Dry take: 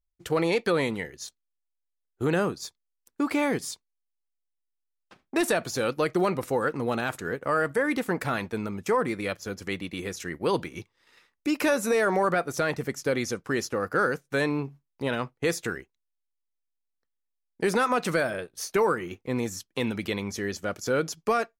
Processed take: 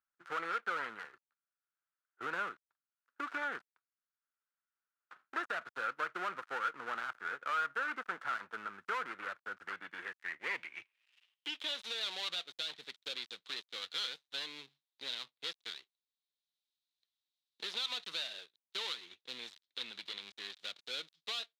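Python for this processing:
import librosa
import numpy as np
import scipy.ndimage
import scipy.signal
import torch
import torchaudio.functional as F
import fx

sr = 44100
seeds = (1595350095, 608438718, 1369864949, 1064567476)

y = fx.dead_time(x, sr, dead_ms=0.26)
y = fx.filter_sweep_bandpass(y, sr, from_hz=1400.0, to_hz=3800.0, start_s=9.62, end_s=11.89, q=5.5)
y = fx.band_squash(y, sr, depth_pct=40)
y = y * librosa.db_to_amplitude(3.5)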